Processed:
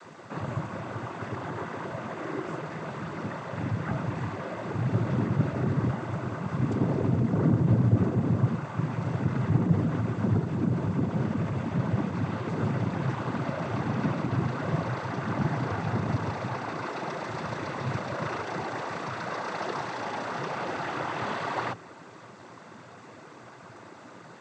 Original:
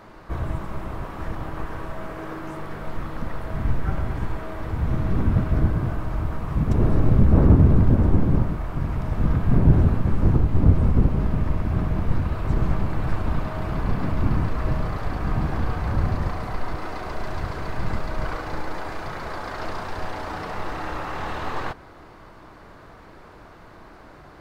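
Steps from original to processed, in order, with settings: limiter -12.5 dBFS, peak gain reduction 9.5 dB; requantised 10-bit, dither triangular; noise vocoder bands 16

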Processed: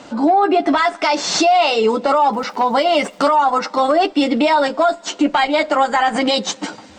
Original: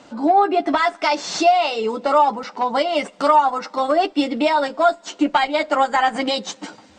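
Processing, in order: limiter -14.5 dBFS, peak gain reduction 10.5 dB; 2.32–3.29 crackle 470/s -48 dBFS; gain +7.5 dB

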